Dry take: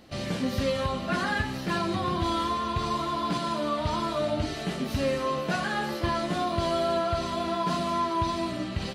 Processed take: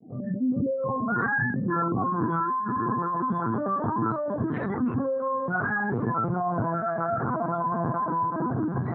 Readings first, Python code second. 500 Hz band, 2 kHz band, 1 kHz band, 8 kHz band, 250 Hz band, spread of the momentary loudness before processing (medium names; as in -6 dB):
-0.5 dB, +3.5 dB, +2.0 dB, under -35 dB, +3.0 dB, 3 LU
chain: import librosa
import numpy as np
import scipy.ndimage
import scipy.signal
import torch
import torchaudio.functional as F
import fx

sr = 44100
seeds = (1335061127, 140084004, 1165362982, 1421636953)

p1 = fx.fade_in_head(x, sr, length_s=0.56)
p2 = fx.spec_gate(p1, sr, threshold_db=-10, keep='strong')
p3 = p2 + fx.echo_diffused(p2, sr, ms=1203, feedback_pct=58, wet_db=-12.0, dry=0)
p4 = fx.volume_shaper(p3, sr, bpm=159, per_beat=1, depth_db=-11, release_ms=60.0, shape='fast start')
p5 = fx.doubler(p4, sr, ms=32.0, db=-6.0)
p6 = fx.lpc_vocoder(p5, sr, seeds[0], excitation='pitch_kept', order=10)
p7 = fx.cabinet(p6, sr, low_hz=110.0, low_slope=24, high_hz=2500.0, hz=(130.0, 240.0, 580.0, 960.0, 1400.0, 2200.0), db=(9, 7, -9, -4, 4, 6))
y = fx.env_flatten(p7, sr, amount_pct=50)